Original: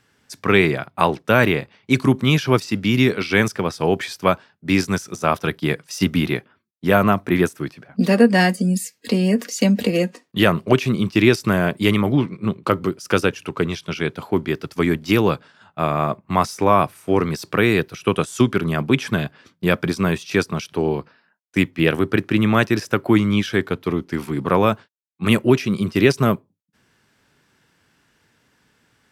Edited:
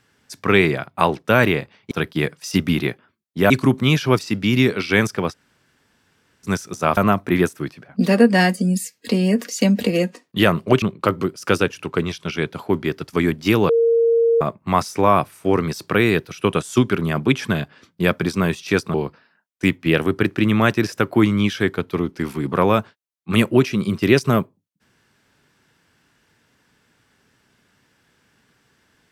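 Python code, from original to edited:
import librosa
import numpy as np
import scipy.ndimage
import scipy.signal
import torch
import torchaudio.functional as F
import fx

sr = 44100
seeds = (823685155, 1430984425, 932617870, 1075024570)

y = fx.edit(x, sr, fx.room_tone_fill(start_s=3.73, length_s=1.13, crossfade_s=0.04),
    fx.move(start_s=5.38, length_s=1.59, to_s=1.91),
    fx.cut(start_s=10.82, length_s=1.63),
    fx.bleep(start_s=15.32, length_s=0.72, hz=462.0, db=-12.5),
    fx.cut(start_s=20.57, length_s=0.3), tone=tone)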